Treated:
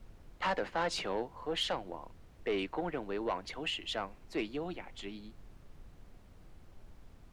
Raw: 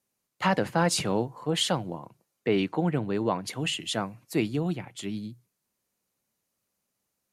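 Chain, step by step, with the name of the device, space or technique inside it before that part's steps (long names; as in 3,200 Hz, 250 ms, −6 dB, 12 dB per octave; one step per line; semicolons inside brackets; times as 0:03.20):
aircraft cabin announcement (band-pass filter 380–4,000 Hz; soft clipping −21.5 dBFS, distortion −14 dB; brown noise bed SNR 13 dB)
level −3.5 dB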